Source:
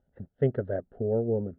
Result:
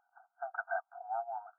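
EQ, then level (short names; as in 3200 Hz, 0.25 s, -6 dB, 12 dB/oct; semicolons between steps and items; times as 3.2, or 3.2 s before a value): brick-wall FIR band-pass 680–1600 Hz; +12.5 dB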